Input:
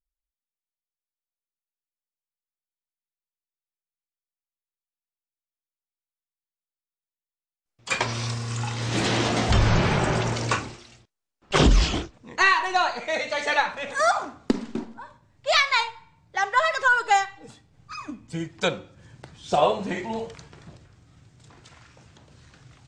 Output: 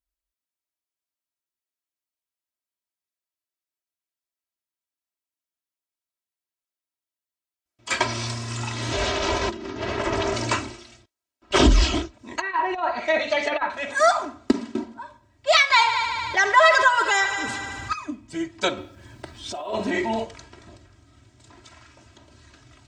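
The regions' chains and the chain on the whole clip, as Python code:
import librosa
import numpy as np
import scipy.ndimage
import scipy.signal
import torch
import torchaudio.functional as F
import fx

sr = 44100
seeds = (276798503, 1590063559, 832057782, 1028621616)

y = fx.chain(x, sr, fx.over_compress(threshold_db=-24.0, ratio=-0.5),
    fx.lowpass(hz=7200.0, slope=24),
    fx.ring_mod(carrier_hz=280.0), at=(8.93, 10.34))
y = fx.chain(y, sr, fx.env_lowpass_down(base_hz=1400.0, full_db=-19.5),
    fx.high_shelf(hz=4300.0, db=5.0),
    fx.over_compress(threshold_db=-25.0, ratio=-0.5), at=(12.19, 13.7))
y = fx.chain(y, sr, fx.echo_heads(ms=75, heads='all three', feedback_pct=49, wet_db=-20.0),
    fx.env_flatten(amount_pct=50), at=(15.7, 17.93))
y = fx.peak_eq(y, sr, hz=6800.0, db=-3.5, octaves=0.39, at=(18.76, 20.23), fade=0.02)
y = fx.over_compress(y, sr, threshold_db=-29.0, ratio=-1.0, at=(18.76, 20.23), fade=0.02)
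y = fx.dmg_noise_colour(y, sr, seeds[0], colour='pink', level_db=-69.0, at=(18.76, 20.23), fade=0.02)
y = scipy.signal.sosfilt(scipy.signal.butter(2, 46.0, 'highpass', fs=sr, output='sos'), y)
y = y + 0.83 * np.pad(y, (int(3.1 * sr / 1000.0), 0))[:len(y)]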